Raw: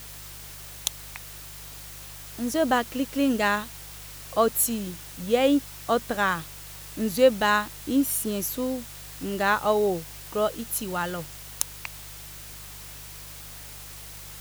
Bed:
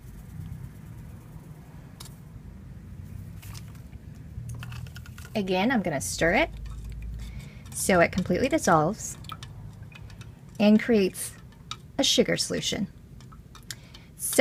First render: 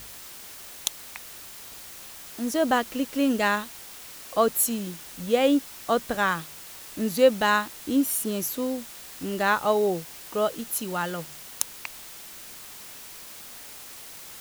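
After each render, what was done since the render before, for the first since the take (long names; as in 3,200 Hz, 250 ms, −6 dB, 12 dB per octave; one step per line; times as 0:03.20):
hum removal 50 Hz, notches 3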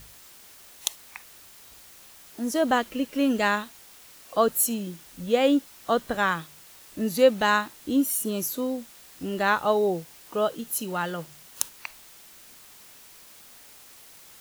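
noise reduction from a noise print 7 dB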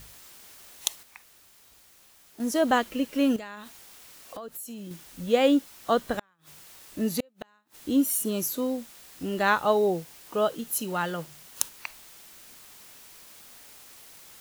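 0:01.03–0:02.40: clip gain −7 dB
0:03.36–0:04.91: downward compressor 10 to 1, threshold −36 dBFS
0:06.15–0:07.78: gate with flip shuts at −16 dBFS, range −41 dB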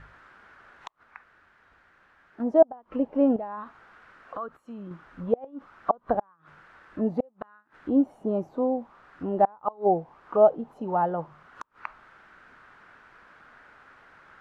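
gate with flip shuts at −13 dBFS, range −31 dB
envelope-controlled low-pass 760–1,600 Hz down, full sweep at −26 dBFS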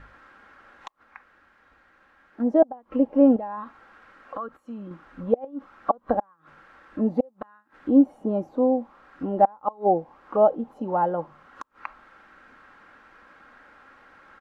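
parametric band 350 Hz +3 dB 1.7 octaves
comb filter 3.7 ms, depth 40%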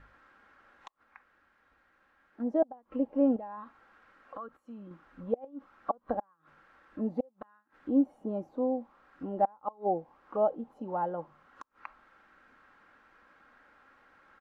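level −9 dB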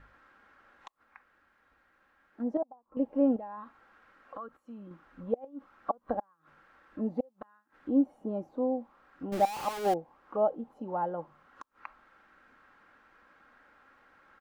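0:02.57–0:02.97: transistor ladder low-pass 1,200 Hz, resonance 55%
0:09.32–0:09.94: converter with a step at zero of −32.5 dBFS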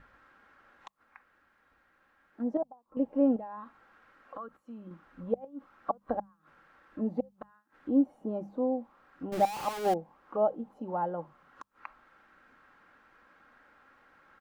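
parametric band 150 Hz +3 dB 0.77 octaves
mains-hum notches 50/100/150/200 Hz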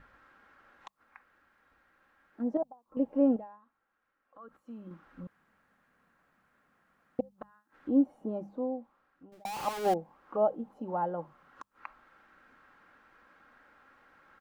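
0:03.34–0:04.59: duck −19 dB, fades 0.25 s
0:05.27–0:07.19: fill with room tone
0:08.18–0:09.45: fade out linear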